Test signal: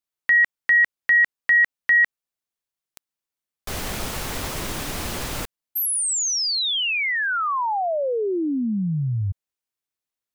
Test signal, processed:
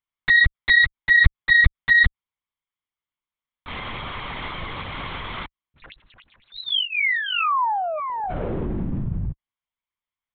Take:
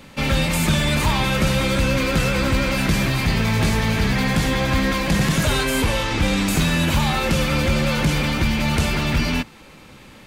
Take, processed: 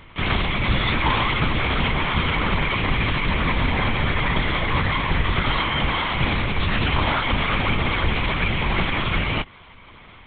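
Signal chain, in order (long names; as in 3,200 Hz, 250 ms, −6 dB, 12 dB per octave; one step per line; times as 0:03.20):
lower of the sound and its delayed copy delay 0.93 ms
high-pass filter 48 Hz 12 dB per octave
parametric band 1,600 Hz +5 dB 2.9 octaves
linear-prediction vocoder at 8 kHz whisper
level −1.5 dB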